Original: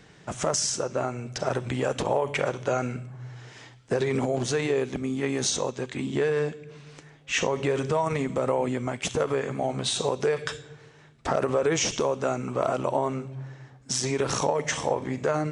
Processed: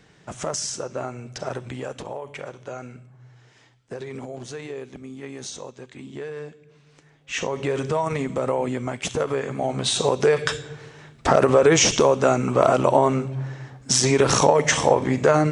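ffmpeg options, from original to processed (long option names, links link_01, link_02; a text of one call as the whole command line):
ffmpeg -i in.wav -af "volume=15.5dB,afade=type=out:start_time=1.38:duration=0.76:silence=0.446684,afade=type=in:start_time=6.89:duration=0.91:silence=0.298538,afade=type=in:start_time=9.51:duration=1.16:silence=0.446684" out.wav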